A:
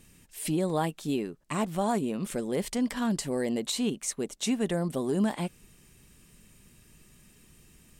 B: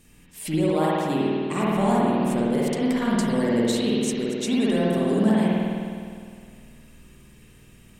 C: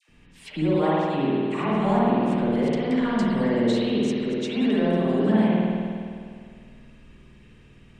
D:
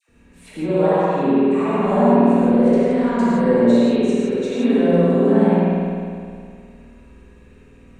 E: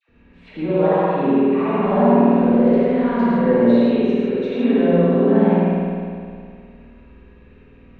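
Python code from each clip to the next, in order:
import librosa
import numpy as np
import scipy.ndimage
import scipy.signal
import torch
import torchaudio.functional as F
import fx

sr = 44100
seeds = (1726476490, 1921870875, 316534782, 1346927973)

y1 = fx.rev_spring(x, sr, rt60_s=2.2, pass_ms=(51,), chirp_ms=60, drr_db=-6.5)
y2 = scipy.signal.sosfilt(scipy.signal.butter(2, 3800.0, 'lowpass', fs=sr, output='sos'), y1)
y2 = fx.dispersion(y2, sr, late='lows', ms=90.0, hz=950.0)
y3 = fx.graphic_eq_31(y2, sr, hz=(500, 2000, 3150, 5000), db=(7, -5, -11, -9))
y3 = fx.rev_gated(y3, sr, seeds[0], gate_ms=200, shape='flat', drr_db=-5.0)
y3 = y3 * librosa.db_to_amplitude(-1.0)
y4 = scipy.signal.sosfilt(scipy.signal.butter(4, 3700.0, 'lowpass', fs=sr, output='sos'), y3)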